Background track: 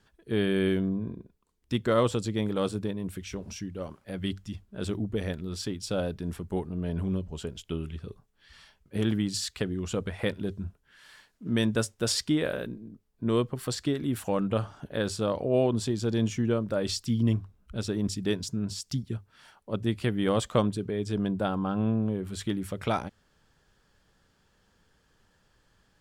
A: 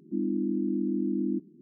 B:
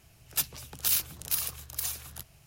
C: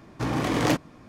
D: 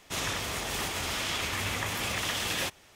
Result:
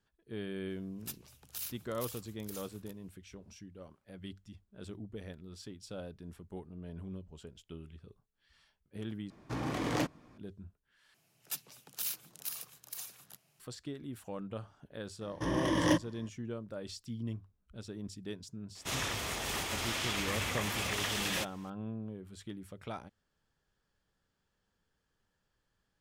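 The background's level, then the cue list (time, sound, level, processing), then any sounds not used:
background track -14 dB
0.7 add B -15 dB
9.3 replace with C -9.5 dB
11.14 replace with B -10.5 dB + HPF 150 Hz 24 dB/oct
15.21 add C -8.5 dB + ripple EQ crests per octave 1.2, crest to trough 14 dB
18.75 add D -3.5 dB
not used: A

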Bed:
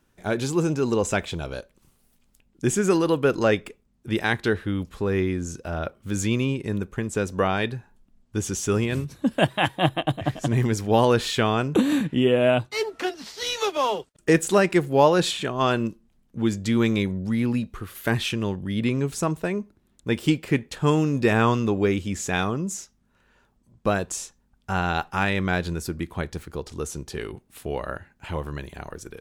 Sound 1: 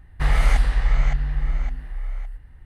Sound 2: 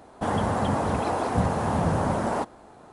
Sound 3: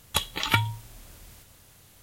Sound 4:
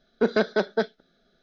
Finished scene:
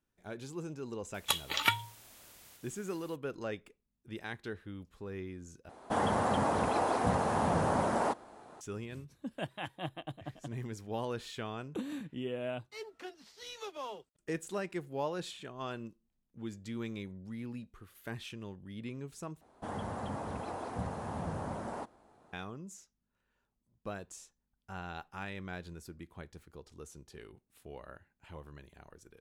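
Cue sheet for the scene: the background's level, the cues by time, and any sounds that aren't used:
bed -18.5 dB
1.14 add 3 -4 dB + HPF 440 Hz 6 dB/oct
5.69 replace with 2 -3 dB + low shelf 170 Hz -9.5 dB
19.41 replace with 2 -14 dB
not used: 1, 4

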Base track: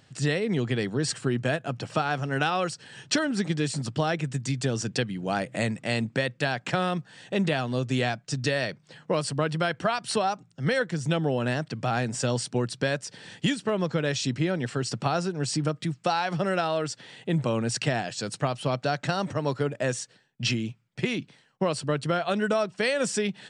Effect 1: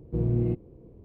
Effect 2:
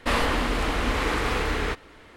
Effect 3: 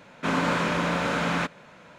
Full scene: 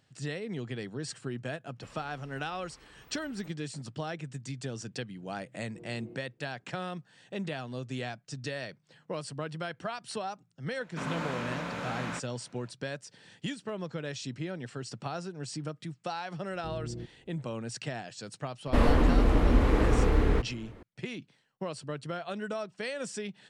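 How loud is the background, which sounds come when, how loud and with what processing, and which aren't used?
base track -10.5 dB
1.76 add 2 -4.5 dB + spectral noise reduction 29 dB
5.61 add 1 -16 dB + Bessel high-pass 300 Hz
10.73 add 3 -11 dB
16.51 add 1 -14 dB
18.67 add 2 -3.5 dB + tilt shelf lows +9 dB, about 790 Hz

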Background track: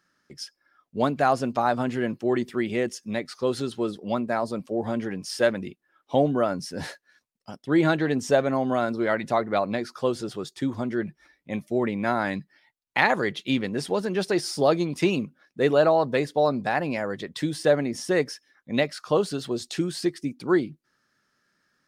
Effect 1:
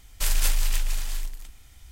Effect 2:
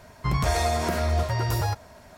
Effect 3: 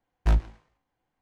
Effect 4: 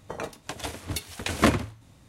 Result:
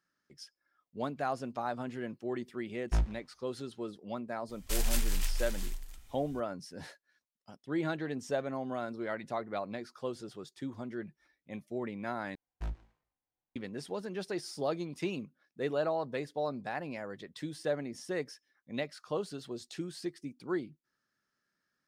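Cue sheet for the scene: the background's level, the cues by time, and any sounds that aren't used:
background track -12.5 dB
2.66 add 3 -7.5 dB
4.49 add 1 -7.5 dB
12.35 replace with 3 -16.5 dB
not used: 2, 4

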